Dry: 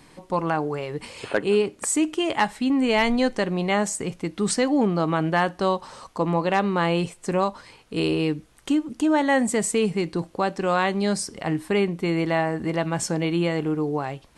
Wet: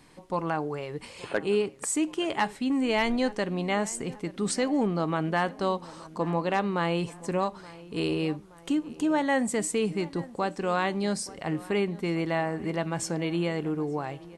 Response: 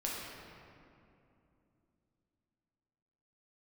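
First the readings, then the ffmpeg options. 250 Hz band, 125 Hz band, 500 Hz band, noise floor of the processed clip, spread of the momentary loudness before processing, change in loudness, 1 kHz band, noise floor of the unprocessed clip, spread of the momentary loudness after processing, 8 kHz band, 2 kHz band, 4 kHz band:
-5.0 dB, -5.0 dB, -5.0 dB, -49 dBFS, 8 LU, -5.0 dB, -5.0 dB, -53 dBFS, 7 LU, -5.0 dB, -5.0 dB, -5.0 dB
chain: -filter_complex "[0:a]asplit=2[a][b];[b]adelay=874,lowpass=f=2.3k:p=1,volume=-19dB,asplit=2[c][d];[d]adelay=874,lowpass=f=2.3k:p=1,volume=0.53,asplit=2[e][f];[f]adelay=874,lowpass=f=2.3k:p=1,volume=0.53,asplit=2[g][h];[h]adelay=874,lowpass=f=2.3k:p=1,volume=0.53[i];[a][c][e][g][i]amix=inputs=5:normalize=0,volume=-5dB"

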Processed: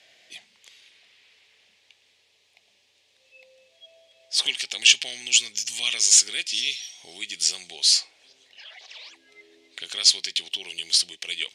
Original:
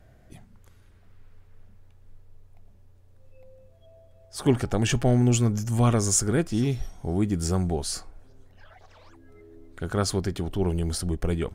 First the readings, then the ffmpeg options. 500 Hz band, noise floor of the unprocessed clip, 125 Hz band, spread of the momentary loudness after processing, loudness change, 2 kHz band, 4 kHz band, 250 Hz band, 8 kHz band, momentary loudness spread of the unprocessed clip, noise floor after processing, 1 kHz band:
-20.5 dB, -55 dBFS, under -35 dB, 16 LU, +4.5 dB, +10.0 dB, +17.0 dB, under -25 dB, +9.0 dB, 9 LU, -65 dBFS, -15.5 dB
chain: -filter_complex "[0:a]acrossover=split=2200[a][b];[a]acompressor=threshold=-39dB:ratio=4[c];[c][b]amix=inputs=2:normalize=0,asoftclip=type=tanh:threshold=-17dB,aexciter=amount=11:drive=8.6:freq=2.2k,highpass=500,lowpass=3.2k,volume=-1dB"

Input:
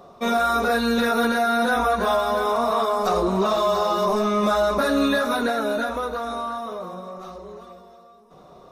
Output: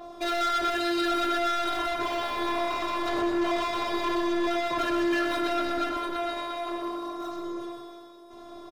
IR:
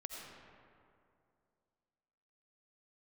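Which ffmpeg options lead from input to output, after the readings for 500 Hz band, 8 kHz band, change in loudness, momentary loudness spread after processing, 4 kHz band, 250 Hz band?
-8.0 dB, -6.0 dB, -6.5 dB, 10 LU, -2.5 dB, -4.5 dB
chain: -filter_complex "[0:a]afftfilt=real='hypot(re,im)*cos(PI*b)':imag='0':win_size=512:overlap=0.75,acrossover=split=4100[a][b];[a]crystalizer=i=1.5:c=0[c];[c][b]amix=inputs=2:normalize=0,aresample=32000,aresample=44100,equalizer=f=170:w=1.1:g=6.5,bandreject=f=60:t=h:w=6,bandreject=f=120:t=h:w=6,bandreject=f=180:t=h:w=6,bandreject=f=240:t=h:w=6,bandreject=f=300:t=h:w=6,bandreject=f=360:t=h:w=6,bandreject=f=420:t=h:w=6,asplit=2[d][e];[e]acompressor=threshold=-30dB:ratio=16,volume=0.5dB[f];[d][f]amix=inputs=2:normalize=0,asoftclip=type=hard:threshold=-25.5dB,aecho=1:1:125.4|195.3:0.501|0.251,adynamicequalizer=threshold=0.00562:dfrequency=5400:dqfactor=0.7:tfrequency=5400:tqfactor=0.7:attack=5:release=100:ratio=0.375:range=2.5:mode=cutabove:tftype=highshelf"

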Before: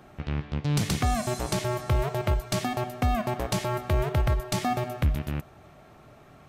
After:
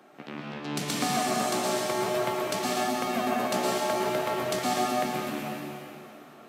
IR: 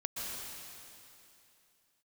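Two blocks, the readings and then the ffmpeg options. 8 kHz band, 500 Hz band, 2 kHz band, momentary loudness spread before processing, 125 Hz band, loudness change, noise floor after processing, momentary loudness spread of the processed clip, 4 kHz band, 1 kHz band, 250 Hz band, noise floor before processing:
+3.5 dB, +3.0 dB, +3.0 dB, 5 LU, -14.0 dB, 0.0 dB, -50 dBFS, 13 LU, +3.5 dB, +3.0 dB, +0.5 dB, -53 dBFS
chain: -filter_complex "[0:a]highpass=f=220:w=0.5412,highpass=f=220:w=1.3066[a];[1:a]atrim=start_sample=2205,asetrate=48510,aresample=44100[b];[a][b]afir=irnorm=-1:irlink=0,volume=1dB"

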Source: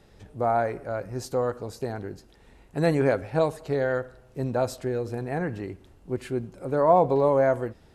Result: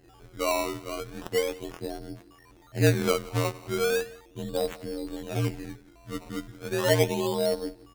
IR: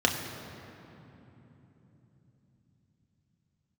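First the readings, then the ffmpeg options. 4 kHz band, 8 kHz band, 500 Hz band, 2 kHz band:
+11.5 dB, +9.5 dB, -4.0 dB, +1.5 dB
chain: -filter_complex "[0:a]equalizer=f=1.4k:w=1.3:g=-8.5,aecho=1:1:6.2:0.9,aeval=exprs='val(0)+0.00251*sin(2*PI*9200*n/s)':c=same,acrossover=split=750[a][b];[b]volume=27.5dB,asoftclip=hard,volume=-27.5dB[c];[a][c]amix=inputs=2:normalize=0,afftfilt=real='hypot(re,im)*cos(PI*b)':imag='0':win_size=2048:overlap=0.75,afreqshift=-55,acrusher=samples=18:mix=1:aa=0.000001:lfo=1:lforange=18:lforate=0.36,aecho=1:1:176:0.0841"

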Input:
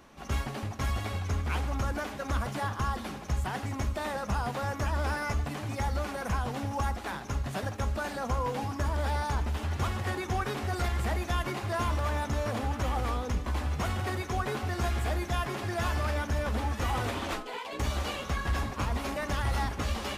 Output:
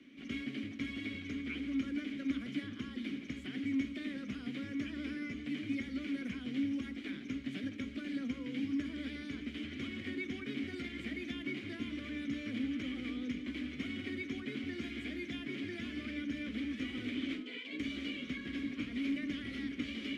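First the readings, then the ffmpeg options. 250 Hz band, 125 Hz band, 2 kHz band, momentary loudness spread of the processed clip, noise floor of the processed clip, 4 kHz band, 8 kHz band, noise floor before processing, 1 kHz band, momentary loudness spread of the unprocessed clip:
+2.0 dB, -19.0 dB, -7.0 dB, 5 LU, -47 dBFS, -5.0 dB, under -15 dB, -40 dBFS, -26.5 dB, 3 LU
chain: -filter_complex "[0:a]acrossover=split=180|510|1100[a][b][c][d];[a]acompressor=threshold=-36dB:ratio=4[e];[b]acompressor=threshold=-40dB:ratio=4[f];[c]acompressor=threshold=-45dB:ratio=4[g];[d]acompressor=threshold=-40dB:ratio=4[h];[e][f][g][h]amix=inputs=4:normalize=0,asplit=3[i][j][k];[i]bandpass=f=270:t=q:w=8,volume=0dB[l];[j]bandpass=f=2.29k:t=q:w=8,volume=-6dB[m];[k]bandpass=f=3.01k:t=q:w=8,volume=-9dB[n];[l][m][n]amix=inputs=3:normalize=0,volume=10dB"

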